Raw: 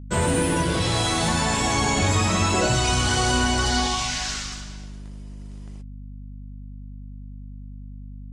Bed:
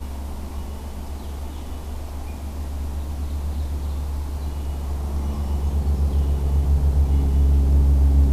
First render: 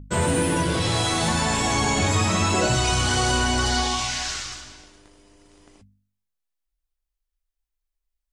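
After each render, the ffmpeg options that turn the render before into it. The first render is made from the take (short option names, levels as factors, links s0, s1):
-af "bandreject=f=50:t=h:w=4,bandreject=f=100:t=h:w=4,bandreject=f=150:t=h:w=4,bandreject=f=200:t=h:w=4,bandreject=f=250:t=h:w=4"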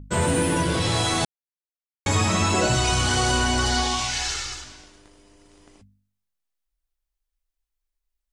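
-filter_complex "[0:a]asettb=1/sr,asplit=3[s0][s1][s2];[s0]atrim=end=4.134[s3];[s1]atrim=start=4.13:end=4.64,asetpts=PTS-STARTPTS,afade=t=in:d=0.004:c=qsin,afade=t=out:st=0.506:d=0.004:c=qsin,aecho=1:1:2.3:0.65,atrim=end_sample=22491[s4];[s2]atrim=start=4.636[s5];[s3][s4]acrossfade=d=0.004:c1=hsin:c2=qsin[s6];[s6][s5]acrossfade=d=0.004:c1=qsin:c2=hsin,asplit=3[s7][s8][s9];[s7]atrim=end=1.25,asetpts=PTS-STARTPTS,afade=t=out:st=1.246:d=0.004:c=hsin[s10];[s8]atrim=start=1.25:end=2.06,asetpts=PTS-STARTPTS,volume=0[s11];[s9]atrim=start=2.06,asetpts=PTS-STARTPTS,afade=t=in:d=0.004:c=hsin[s12];[s10][s11][s12]concat=n=3:v=0:a=1"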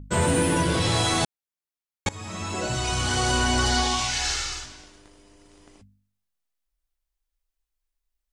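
-filter_complex "[0:a]asettb=1/sr,asplit=3[s0][s1][s2];[s0]atrim=end=0.774[s3];[s1]atrim=start=0.77:end=1.23,asetpts=PTS-STARTPTS,afade=t=in:d=0.004:c=qsin,afade=t=out:st=0.456:d=0.004:c=qsin,aeval=exprs='val(0)*gte(abs(val(0)),0.00266)':c=same[s4];[s2]atrim=start=1.226[s5];[s3][s4]acrossfade=d=0.004:c1=hsin:c2=qsin[s6];[s6][s5]acrossfade=d=0.004:c1=qsin:c2=hsin,asettb=1/sr,asplit=3[s7][s8][s9];[s7]atrim=end=4.194[s10];[s8]atrim=start=4.19:end=4.66,asetpts=PTS-STARTPTS,afade=t=in:d=0.004:c=qsin,afade=t=out:st=0.466:d=0.004:c=qsin,asplit=2[s11][s12];[s12]adelay=45,volume=0.501[s13];[s11][s13]amix=inputs=2:normalize=0,atrim=end_sample=20727[s14];[s9]atrim=start=4.656[s15];[s10][s14]acrossfade=d=0.004:c1=hsin:c2=qsin[s16];[s16][s15]acrossfade=d=0.004:c1=qsin:c2=hsin,asplit=2[s17][s18];[s17]atrim=end=2.09,asetpts=PTS-STARTPTS,afade=t=out:st=2.086:d=0.004:c=hsin:silence=0.0749894[s19];[s18]atrim=start=2.09,asetpts=PTS-STARTPTS,afade=t=in:d=1.48:silence=0.0749894[s20];[s19][s20]concat=n=2:v=0:a=1"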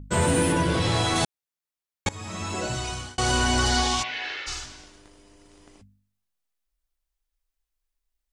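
-filter_complex "[0:a]asettb=1/sr,asplit=3[s0][s1][s2];[s0]atrim=end=0.524[s3];[s1]atrim=start=0.52:end=1.16,asetpts=PTS-STARTPTS,afade=t=in:d=0.004:c=qsin,afade=t=out:st=0.636:d=0.004:c=qsin,highshelf=f=5700:g=-8[s4];[s2]atrim=start=1.156[s5];[s3][s4]acrossfade=d=0.004:c1=hsin:c2=qsin[s6];[s6][s5]acrossfade=d=0.004:c1=qsin:c2=hsin,asplit=3[s7][s8][s9];[s7]afade=t=out:st=4.02:d=0.02[s10];[s8]highpass=350,equalizer=f=850:t=q:w=4:g=-8,equalizer=f=1300:t=q:w=4:g=-7,equalizer=f=1900:t=q:w=4:g=3,lowpass=f=3100:w=0.5412,lowpass=f=3100:w=1.3066,afade=t=in:st=4.02:d=0.02,afade=t=out:st=4.46:d=0.02[s11];[s9]afade=t=in:st=4.46:d=0.02[s12];[s10][s11][s12]amix=inputs=3:normalize=0,asplit=2[s13][s14];[s13]atrim=end=3.18,asetpts=PTS-STARTPTS,afade=t=out:st=2.41:d=0.77:c=qsin[s15];[s14]atrim=start=3.18,asetpts=PTS-STARTPTS,afade=t=in:d=0.004:c=hsin[s16];[s15][s16]concat=n=2:v=0:a=1"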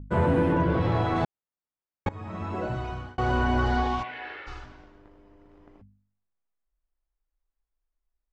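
-af "lowpass=1400"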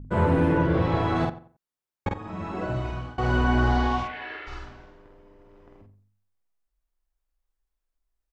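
-filter_complex "[0:a]asplit=2[s0][s1];[s1]adelay=48,volume=0.708[s2];[s0][s2]amix=inputs=2:normalize=0,asplit=2[s3][s4];[s4]adelay=90,lowpass=f=2300:p=1,volume=0.178,asplit=2[s5][s6];[s6]adelay=90,lowpass=f=2300:p=1,volume=0.27,asplit=2[s7][s8];[s8]adelay=90,lowpass=f=2300:p=1,volume=0.27[s9];[s3][s5][s7][s9]amix=inputs=4:normalize=0"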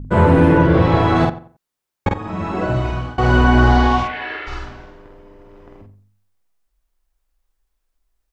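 -af "volume=2.99,alimiter=limit=0.794:level=0:latency=1"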